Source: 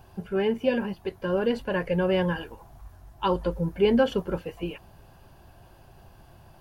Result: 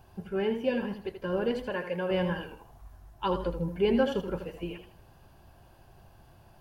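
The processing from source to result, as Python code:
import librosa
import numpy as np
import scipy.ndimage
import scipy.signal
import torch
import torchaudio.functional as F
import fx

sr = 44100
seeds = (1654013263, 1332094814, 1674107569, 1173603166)

y = fx.highpass(x, sr, hz=360.0, slope=6, at=(1.7, 2.11))
y = fx.echo_warbled(y, sr, ms=80, feedback_pct=32, rate_hz=2.8, cents=70, wet_db=-9)
y = F.gain(torch.from_numpy(y), -4.5).numpy()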